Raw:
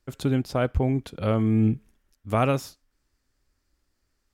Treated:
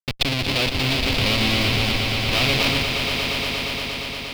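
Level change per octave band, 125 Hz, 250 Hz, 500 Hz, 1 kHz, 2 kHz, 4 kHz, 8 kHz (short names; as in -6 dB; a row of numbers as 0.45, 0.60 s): +1.0, -0.5, +1.0, +4.0, +18.0, +25.5, +15.0 dB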